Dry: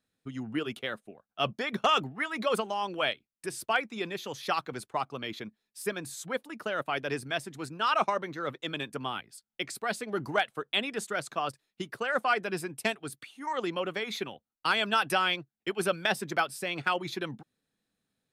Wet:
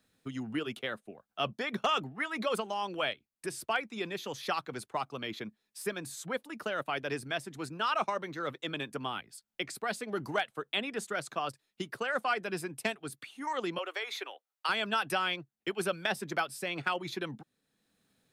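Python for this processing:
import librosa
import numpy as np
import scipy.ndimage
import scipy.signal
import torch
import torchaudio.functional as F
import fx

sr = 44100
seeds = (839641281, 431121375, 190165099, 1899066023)

y = fx.bessel_highpass(x, sr, hz=630.0, order=8, at=(13.78, 14.69))
y = fx.band_squash(y, sr, depth_pct=40)
y = y * 10.0 ** (-3.0 / 20.0)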